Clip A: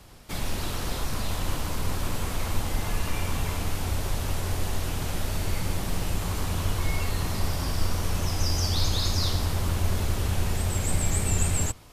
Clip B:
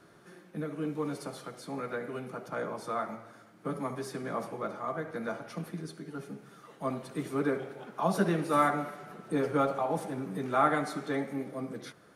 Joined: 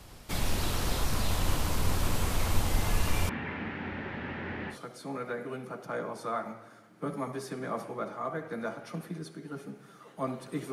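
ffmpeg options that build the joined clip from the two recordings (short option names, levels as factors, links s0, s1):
-filter_complex "[0:a]asettb=1/sr,asplit=3[s0][s1][s2];[s0]atrim=end=3.294[s3];[s1]atrim=start=3.29:end=4.78,asetpts=PTS-STARTPTS,afade=t=in:d=0.004:c=qsin,afade=t=out:st=1.486:d=0.004:c=qsin,highpass=210,equalizer=f=220:t=q:w=4:g=6,equalizer=f=470:t=q:w=4:g=-4,equalizer=f=670:t=q:w=4:g=-8,equalizer=f=1100:t=q:w=4:g=-8,equalizer=f=1800:t=q:w=4:g=7,lowpass=f=2400:w=0.5412,lowpass=f=2400:w=1.3066[s4];[s2]atrim=start=4.776[s5];[s3][s4]acrossfade=d=0.004:c1=hsin:c2=qsin[s6];[s6][s5]acrossfade=d=0.004:c1=qsin:c2=hsin,apad=whole_dur=10.72,atrim=end=10.72,atrim=end=4.78,asetpts=PTS-STARTPTS[s7];[1:a]atrim=start=1.31:end=7.35,asetpts=PTS-STARTPTS[s8];[s7][s8]acrossfade=d=0.1:c1=tri:c2=tri"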